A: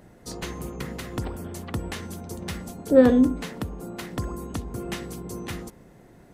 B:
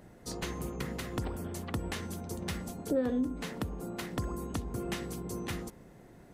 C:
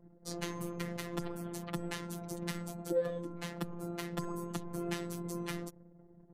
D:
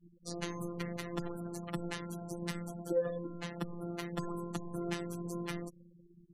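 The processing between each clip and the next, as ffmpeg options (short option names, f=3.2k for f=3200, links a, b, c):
-af "acompressor=threshold=-26dB:ratio=4,volume=-3dB"
-af "anlmdn=0.00251,afftfilt=real='hypot(re,im)*cos(PI*b)':imag='0':win_size=1024:overlap=0.75,volume=1dB"
-af "afftfilt=real='re*gte(hypot(re,im),0.00562)':imag='im*gte(hypot(re,im),0.00562)':win_size=1024:overlap=0.75"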